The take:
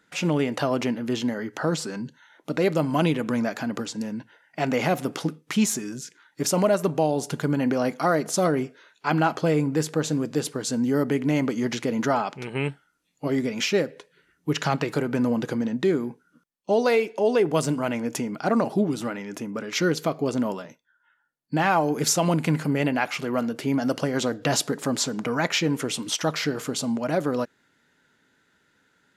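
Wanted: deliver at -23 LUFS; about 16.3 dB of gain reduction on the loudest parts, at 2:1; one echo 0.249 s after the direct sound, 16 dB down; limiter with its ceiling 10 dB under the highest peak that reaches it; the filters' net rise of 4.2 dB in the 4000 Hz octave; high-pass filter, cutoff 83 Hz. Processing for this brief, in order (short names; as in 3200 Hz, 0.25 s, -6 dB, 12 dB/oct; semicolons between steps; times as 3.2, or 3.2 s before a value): HPF 83 Hz; bell 4000 Hz +5.5 dB; compressor 2:1, threshold -48 dBFS; limiter -30 dBFS; echo 0.249 s -16 dB; gain +18 dB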